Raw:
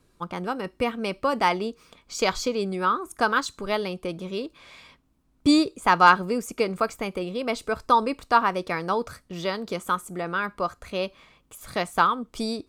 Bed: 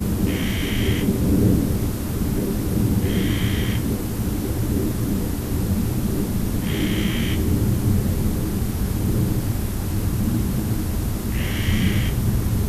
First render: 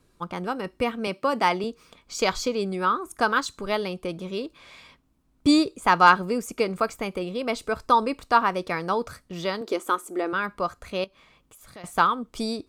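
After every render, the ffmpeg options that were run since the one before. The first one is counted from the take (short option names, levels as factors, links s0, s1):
-filter_complex "[0:a]asettb=1/sr,asplit=3[s0][s1][s2];[s0]atrim=end=1.074[s3];[s1]atrim=start=1.07:end=1.64,asetpts=PTS-STARTPTS,afade=t=in:d=0.004:c=qsin,afade=t=out:st=0.566:d=0.004:c=qsin,highpass=f=120:w=0.5412,highpass=f=120:w=1.3066[s4];[s2]atrim=start=1.636[s5];[s3][s4]acrossfade=d=0.004:c1=hsin:c2=qsin[s6];[s6][s5]acrossfade=d=0.004:c1=qsin:c2=hsin,asettb=1/sr,asplit=3[s7][s8][s9];[s7]atrim=end=9.614[s10];[s8]atrim=start=9.61:end=10.33,asetpts=PTS-STARTPTS,afade=t=in:d=0.004:c=qsin,afade=t=out:st=0.716:d=0.004:c=qsin,lowshelf=f=220:t=q:w=3:g=-13[s11];[s9]atrim=start=10.326[s12];[s10][s11]acrossfade=d=0.004:c1=hsin:c2=qsin[s13];[s13][s12]acrossfade=d=0.004:c1=qsin:c2=hsin,asettb=1/sr,asplit=3[s14][s15][s16];[s14]atrim=end=11.044[s17];[s15]atrim=start=11.04:end=11.84,asetpts=PTS-STARTPTS,afade=t=in:d=0.004:c=qsin,afade=t=out:st=0.796:d=0.004:c=qsin,acompressor=threshold=0.00224:ratio=2:attack=3.2:release=140:knee=1:detection=peak[s18];[s16]atrim=start=11.836[s19];[s17][s18]acrossfade=d=0.004:c1=hsin:c2=qsin[s20];[s20][s19]acrossfade=d=0.004:c1=qsin:c2=hsin"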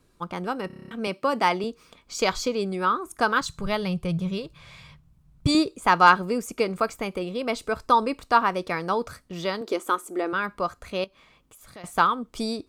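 -filter_complex "[0:a]asettb=1/sr,asplit=3[s0][s1][s2];[s0]atrim=end=3.414[s3];[s1]atrim=start=3.41:end=5.55,asetpts=PTS-STARTPTS,afade=t=in:d=0.004:c=qsin,afade=t=out:st=2.136:d=0.004:c=qsin,lowshelf=f=200:t=q:w=3:g=10[s4];[s2]atrim=start=5.546[s5];[s3][s4]acrossfade=d=0.004:c1=hsin:c2=qsin[s6];[s6][s5]acrossfade=d=0.004:c1=qsin:c2=hsin,asplit=9[s7][s8][s9][s10][s11][s12][s13][s14][s15];[s7]atrim=end=0.702[s16];[s8]atrim=start=0.668:end=0.702[s17];[s9]atrim=start=0.668:end=0.702[s18];[s10]atrim=start=0.668:end=0.702[s19];[s11]atrim=start=0.668:end=0.702[s20];[s12]atrim=start=0.668:end=0.702[s21];[s13]atrim=start=0.668:end=0.702[s22];[s14]atrim=start=0.668:end=0.702[s23];[s15]atrim=start=0.908[s24];[s16][s17]acrossfade=d=0.004:c1=hsin:c2=hsin[s25];[s25][s18]acrossfade=d=0.004:c1=hsin:c2=hsin[s26];[s26][s19]acrossfade=d=0.004:c1=hsin:c2=hsin[s27];[s27][s20]acrossfade=d=0.004:c1=hsin:c2=hsin[s28];[s28][s21]acrossfade=d=0.004:c1=hsin:c2=hsin[s29];[s29][s22]acrossfade=d=0.004:c1=hsin:c2=hsin[s30];[s30][s23]acrossfade=d=0.004:c1=hsin:c2=hsin[s31];[s31][s24]acrossfade=d=0.004:c1=hsin:c2=hsin"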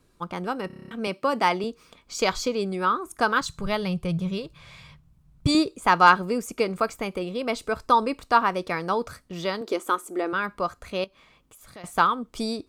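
-af anull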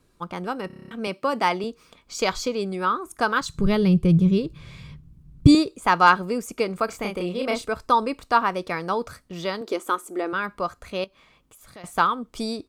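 -filter_complex "[0:a]asettb=1/sr,asplit=3[s0][s1][s2];[s0]atrim=end=3.544[s3];[s1]atrim=start=3.54:end=5.55,asetpts=PTS-STARTPTS,afade=t=in:d=0.004:c=qsin,afade=t=out:st=2.006:d=0.004:c=qsin,lowshelf=f=490:t=q:w=1.5:g=9[s4];[s2]atrim=start=5.546[s5];[s3][s4]acrossfade=d=0.004:c1=hsin:c2=qsin[s6];[s6][s5]acrossfade=d=0.004:c1=qsin:c2=hsin,asplit=3[s7][s8][s9];[s7]afade=t=out:st=6.88:d=0.02[s10];[s8]asplit=2[s11][s12];[s12]adelay=34,volume=0.75[s13];[s11][s13]amix=inputs=2:normalize=0,afade=t=in:st=6.88:d=0.02,afade=t=out:st=7.65:d=0.02[s14];[s9]afade=t=in:st=7.65:d=0.02[s15];[s10][s14][s15]amix=inputs=3:normalize=0"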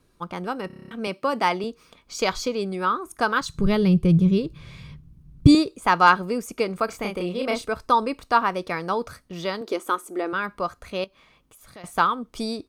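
-af "bandreject=f=7500:w=12"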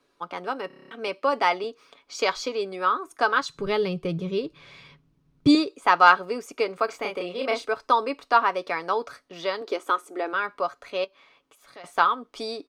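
-filter_complex "[0:a]acrossover=split=290 6200:gain=0.0891 1 0.251[s0][s1][s2];[s0][s1][s2]amix=inputs=3:normalize=0,aecho=1:1:7.1:0.36"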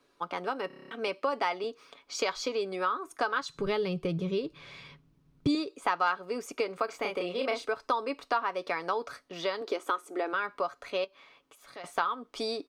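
-af "acompressor=threshold=0.0398:ratio=3"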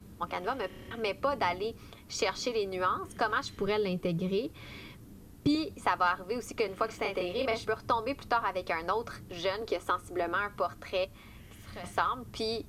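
-filter_complex "[1:a]volume=0.0376[s0];[0:a][s0]amix=inputs=2:normalize=0"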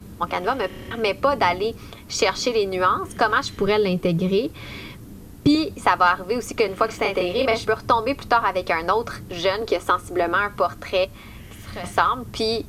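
-af "volume=3.35"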